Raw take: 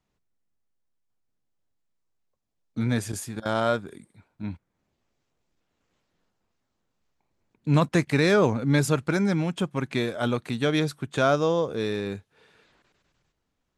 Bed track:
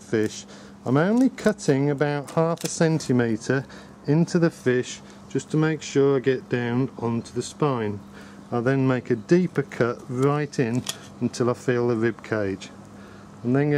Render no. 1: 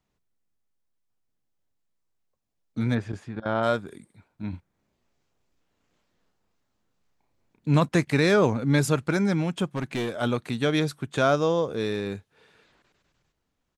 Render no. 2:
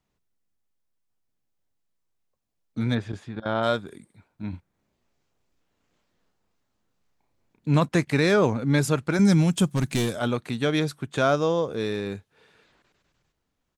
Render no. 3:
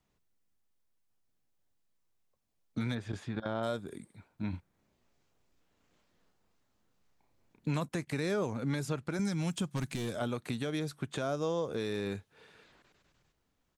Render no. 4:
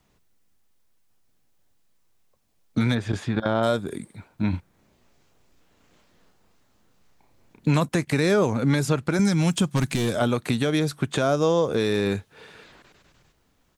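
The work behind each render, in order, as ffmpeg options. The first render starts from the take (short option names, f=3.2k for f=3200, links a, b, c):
-filter_complex "[0:a]asplit=3[a][b][c];[a]afade=t=out:st=2.94:d=0.02[d];[b]lowpass=2.3k,afade=t=in:st=2.94:d=0.02,afade=t=out:st=3.62:d=0.02[e];[c]afade=t=in:st=3.62:d=0.02[f];[d][e][f]amix=inputs=3:normalize=0,asplit=3[g][h][i];[g]afade=t=out:st=4.52:d=0.02[j];[h]asplit=2[k][l];[l]adelay=33,volume=-4dB[m];[k][m]amix=inputs=2:normalize=0,afade=t=in:st=4.52:d=0.02,afade=t=out:st=7.69:d=0.02[n];[i]afade=t=in:st=7.69:d=0.02[o];[j][n][o]amix=inputs=3:normalize=0,asplit=3[p][q][r];[p]afade=t=out:st=9.7:d=0.02[s];[q]asoftclip=type=hard:threshold=-24dB,afade=t=in:st=9.7:d=0.02,afade=t=out:st=10.2:d=0.02[t];[r]afade=t=in:st=10.2:d=0.02[u];[s][t][u]amix=inputs=3:normalize=0"
-filter_complex "[0:a]asettb=1/sr,asplit=3[a][b][c];[a]atrim=end=2.874[d];[b]atrim=start=2.87:end=3.88,asetpts=PTS-STARTPTS,afade=t=in:d=0.004:c=qsin,afade=t=out:st=1.006:d=0.004:c=qsin,equalizer=f=3.6k:t=o:w=0.36:g=7[e];[c]atrim=start=3.876[f];[d][e]acrossfade=d=0.004:c1=hsin:c2=qsin[g];[g][f]acrossfade=d=0.004:c1=qsin:c2=hsin,asettb=1/sr,asplit=3[h][i][j];[h]atrim=end=9.194[k];[i]atrim=start=9.19:end=10.19,asetpts=PTS-STARTPTS,afade=t=in:d=0.004:c=qsin,afade=t=out:st=0.996:d=0.004:c=qsin,bass=f=250:g=9,treble=f=4k:g=14[l];[j]atrim=start=10.186[m];[k][l]acrossfade=d=0.004:c1=hsin:c2=qsin[n];[n][m]acrossfade=d=0.004:c1=qsin:c2=hsin"
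-filter_complex "[0:a]acrossover=split=740|6800[a][b][c];[a]acompressor=threshold=-32dB:ratio=4[d];[b]acompressor=threshold=-41dB:ratio=4[e];[c]acompressor=threshold=-52dB:ratio=4[f];[d][e][f]amix=inputs=3:normalize=0,alimiter=limit=-23.5dB:level=0:latency=1:release=174"
-af "volume=12dB"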